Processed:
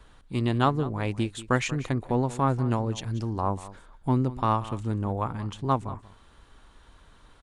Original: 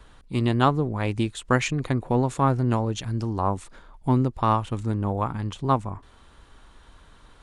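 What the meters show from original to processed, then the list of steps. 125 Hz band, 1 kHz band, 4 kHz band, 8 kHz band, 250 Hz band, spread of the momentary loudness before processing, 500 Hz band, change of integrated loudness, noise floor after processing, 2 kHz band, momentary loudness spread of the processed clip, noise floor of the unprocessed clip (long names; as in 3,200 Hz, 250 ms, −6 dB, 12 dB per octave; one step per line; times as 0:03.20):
−3.0 dB, −3.0 dB, −3.0 dB, −3.0 dB, −3.0 dB, 7 LU, −3.0 dB, −3.0 dB, −56 dBFS, −3.0 dB, 8 LU, −53 dBFS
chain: single-tap delay 187 ms −16.5 dB
level −3 dB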